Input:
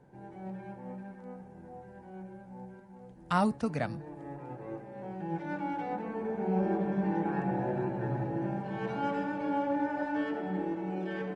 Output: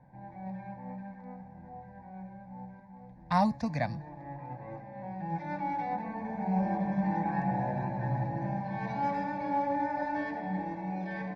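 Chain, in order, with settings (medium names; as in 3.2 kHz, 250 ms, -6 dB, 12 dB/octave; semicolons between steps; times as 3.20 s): level-controlled noise filter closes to 2.4 kHz, open at -26 dBFS; static phaser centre 2 kHz, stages 8; trim +4 dB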